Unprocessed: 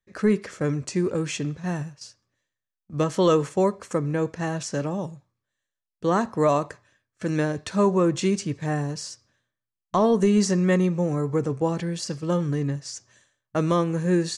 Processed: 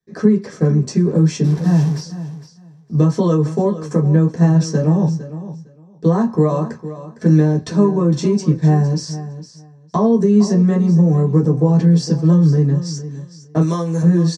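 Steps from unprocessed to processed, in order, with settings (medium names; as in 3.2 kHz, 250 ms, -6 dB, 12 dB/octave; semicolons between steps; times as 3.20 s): 1.44–2.01 s: one-bit delta coder 64 kbps, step -32.5 dBFS; compression, threshold -24 dBFS, peak gain reduction 8.5 dB; 13.61–14.02 s: RIAA curve recording; feedback delay 458 ms, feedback 17%, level -14 dB; reverberation, pre-delay 3 ms, DRR -3.5 dB; trim -7 dB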